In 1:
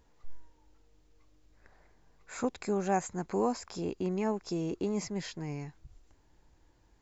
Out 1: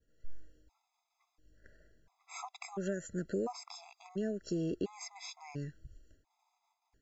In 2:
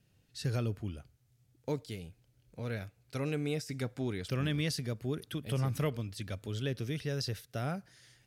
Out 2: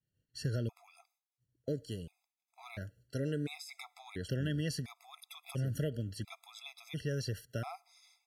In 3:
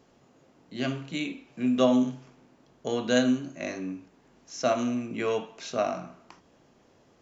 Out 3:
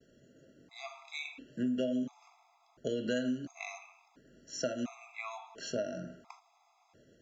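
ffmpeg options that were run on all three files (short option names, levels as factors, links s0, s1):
-af "acompressor=threshold=0.0282:ratio=6,agate=range=0.0224:threshold=0.00126:ratio=3:detection=peak,afftfilt=real='re*gt(sin(2*PI*0.72*pts/sr)*(1-2*mod(floor(b*sr/1024/670),2)),0)':imag='im*gt(sin(2*PI*0.72*pts/sr)*(1-2*mod(floor(b*sr/1024/670),2)),0)':win_size=1024:overlap=0.75,volume=1.12"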